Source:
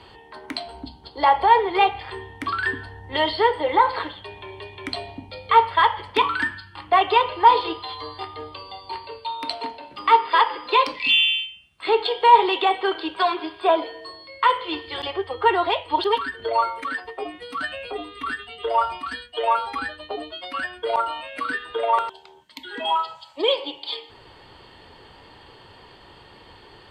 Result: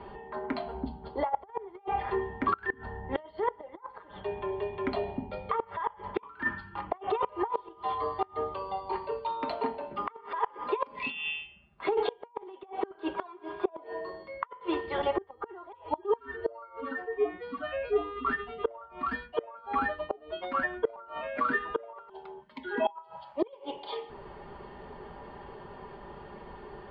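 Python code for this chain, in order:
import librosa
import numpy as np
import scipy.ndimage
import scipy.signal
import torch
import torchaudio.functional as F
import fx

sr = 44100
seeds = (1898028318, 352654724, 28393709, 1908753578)

y = fx.hpss_only(x, sr, part='harmonic', at=(15.72, 18.25))
y = y + 0.59 * np.pad(y, (int(5.0 * sr / 1000.0), 0))[:len(y)]
y = fx.over_compress(y, sr, threshold_db=-20.0, ratio=-0.5)
y = scipy.signal.sosfilt(scipy.signal.butter(2, 1200.0, 'lowpass', fs=sr, output='sos'), y)
y = fx.gate_flip(y, sr, shuts_db=-16.0, range_db=-25)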